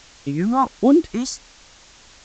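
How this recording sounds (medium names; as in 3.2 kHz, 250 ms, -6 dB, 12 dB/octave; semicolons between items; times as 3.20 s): phasing stages 4, 1.4 Hz, lowest notch 410–1900 Hz; a quantiser's noise floor 8-bit, dither triangular; A-law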